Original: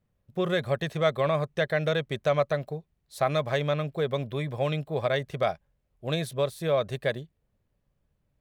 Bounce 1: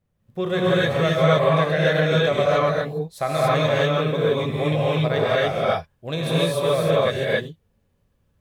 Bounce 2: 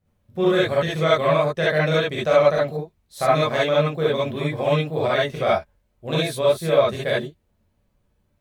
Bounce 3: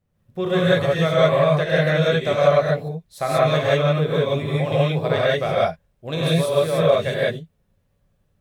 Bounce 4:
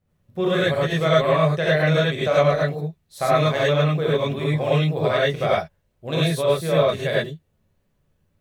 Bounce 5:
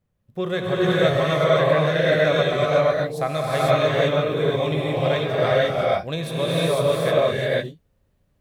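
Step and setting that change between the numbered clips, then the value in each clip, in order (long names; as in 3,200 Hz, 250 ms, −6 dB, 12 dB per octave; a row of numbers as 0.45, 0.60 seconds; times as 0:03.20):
reverb whose tail is shaped and stops, gate: 310, 90, 210, 130, 530 milliseconds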